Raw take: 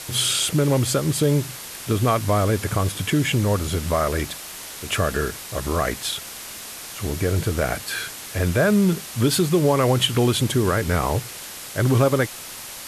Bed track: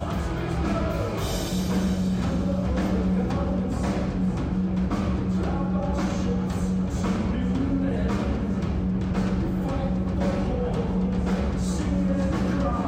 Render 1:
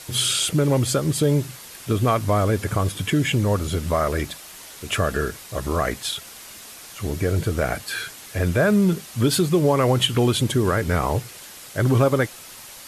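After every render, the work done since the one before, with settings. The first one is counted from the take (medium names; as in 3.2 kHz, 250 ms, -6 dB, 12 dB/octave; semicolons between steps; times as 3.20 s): noise reduction 6 dB, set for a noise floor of -36 dBFS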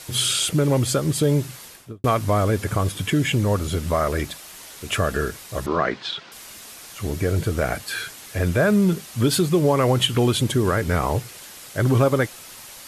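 1.63–2.04 s: studio fade out; 5.66–6.32 s: cabinet simulation 160–4600 Hz, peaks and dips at 170 Hz +4 dB, 360 Hz +4 dB, 970 Hz +4 dB, 1.5 kHz +4 dB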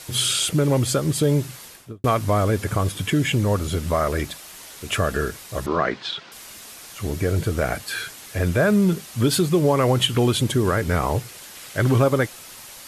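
11.55–11.96 s: peaking EQ 2.3 kHz +4 dB 1.8 oct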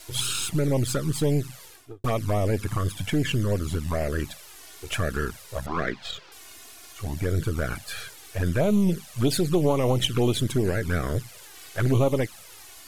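partial rectifier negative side -7 dB; touch-sensitive flanger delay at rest 3.3 ms, full sweep at -16 dBFS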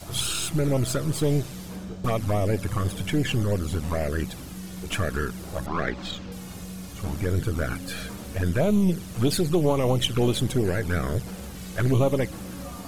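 add bed track -13 dB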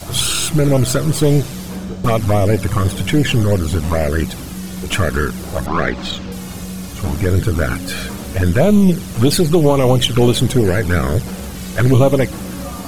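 trim +10 dB; peak limiter -1 dBFS, peak gain reduction 1.5 dB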